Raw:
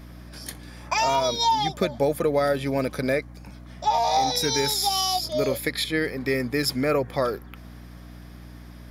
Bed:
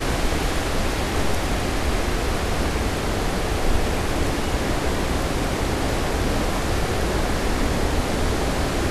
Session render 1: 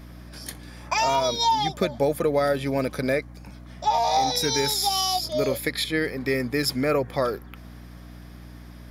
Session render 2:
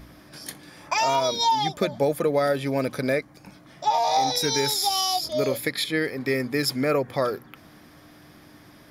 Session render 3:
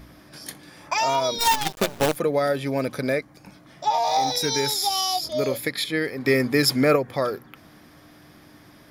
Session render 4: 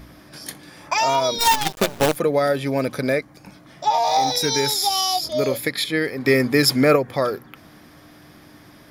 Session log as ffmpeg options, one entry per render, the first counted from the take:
-af anull
-af "bandreject=f=60:t=h:w=4,bandreject=f=120:t=h:w=4,bandreject=f=180:t=h:w=4,bandreject=f=240:t=h:w=4"
-filter_complex "[0:a]asplit=3[a][b][c];[a]afade=t=out:st=1.38:d=0.02[d];[b]acrusher=bits=4:dc=4:mix=0:aa=0.000001,afade=t=in:st=1.38:d=0.02,afade=t=out:st=2.15:d=0.02[e];[c]afade=t=in:st=2.15:d=0.02[f];[d][e][f]amix=inputs=3:normalize=0,asettb=1/sr,asplit=3[g][h][i];[g]atrim=end=4.054[j];[h]atrim=start=4.05:end=4.5,asetpts=PTS-STARTPTS,afade=t=in:d=0.004:c=qsin,afade=t=out:st=0.446:d=0.004:c=qsin,acrusher=bits=9:dc=4:mix=0:aa=0.000001[k];[i]atrim=start=4.496[l];[j][k]acrossfade=d=0.004:c1=hsin:c2=qsin[m];[m][l]acrossfade=d=0.004:c1=qsin:c2=hsin,asplit=3[n][o][p];[n]afade=t=out:st=6.24:d=0.02[q];[o]acontrast=29,afade=t=in:st=6.24:d=0.02,afade=t=out:st=6.95:d=0.02[r];[p]afade=t=in:st=6.95:d=0.02[s];[q][r][s]amix=inputs=3:normalize=0"
-af "volume=3dB"

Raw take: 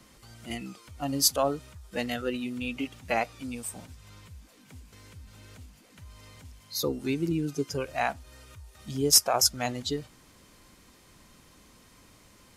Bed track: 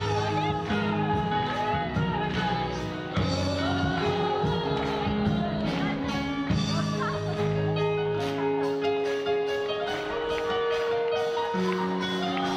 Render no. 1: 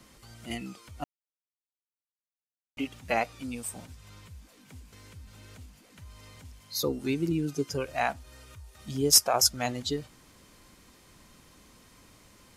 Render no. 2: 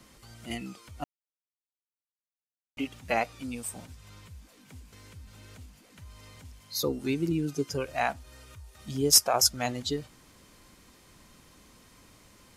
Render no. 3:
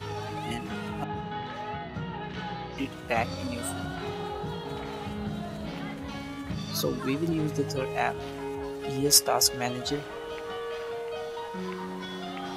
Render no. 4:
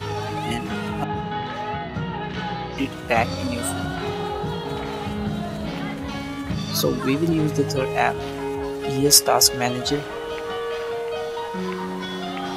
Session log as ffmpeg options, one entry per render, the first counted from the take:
-filter_complex "[0:a]asplit=3[a][b][c];[a]atrim=end=1.04,asetpts=PTS-STARTPTS,afade=t=out:st=1.036:d=0.004:c=hsin[d];[b]atrim=start=1.04:end=2.77,asetpts=PTS-STARTPTS,volume=0[e];[c]atrim=start=2.77,asetpts=PTS-STARTPTS,afade=t=in:d=0.004:c=hsin[f];[d][e][f]concat=n=3:v=0:a=1"
-af anull
-filter_complex "[1:a]volume=-8.5dB[a];[0:a][a]amix=inputs=2:normalize=0"
-af "volume=7.5dB,alimiter=limit=-1dB:level=0:latency=1"

